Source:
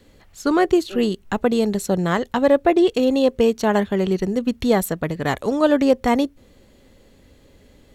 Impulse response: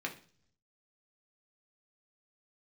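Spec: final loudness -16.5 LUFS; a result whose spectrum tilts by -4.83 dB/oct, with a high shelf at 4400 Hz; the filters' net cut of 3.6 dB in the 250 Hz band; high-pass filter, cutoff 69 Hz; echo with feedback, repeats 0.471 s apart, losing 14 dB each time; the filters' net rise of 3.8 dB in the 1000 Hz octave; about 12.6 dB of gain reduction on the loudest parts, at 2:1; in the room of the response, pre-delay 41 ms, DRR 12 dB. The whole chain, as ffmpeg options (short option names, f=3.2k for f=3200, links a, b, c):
-filter_complex "[0:a]highpass=69,equalizer=f=250:t=o:g=-5,equalizer=f=1k:t=o:g=6,highshelf=f=4.4k:g=-7,acompressor=threshold=-35dB:ratio=2,aecho=1:1:471|942:0.2|0.0399,asplit=2[a][b];[1:a]atrim=start_sample=2205,adelay=41[c];[b][c]afir=irnorm=-1:irlink=0,volume=-15dB[d];[a][d]amix=inputs=2:normalize=0,volume=14dB"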